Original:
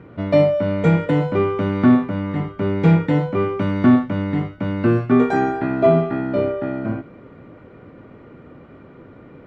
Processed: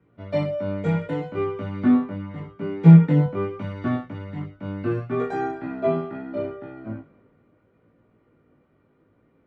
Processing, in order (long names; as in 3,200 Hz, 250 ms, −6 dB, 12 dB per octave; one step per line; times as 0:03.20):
0:02.54–0:03.26: low shelf with overshoot 110 Hz −12.5 dB, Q 3
chorus effect 0.75 Hz, delay 17.5 ms, depth 2.8 ms
multiband upward and downward expander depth 40%
level −6 dB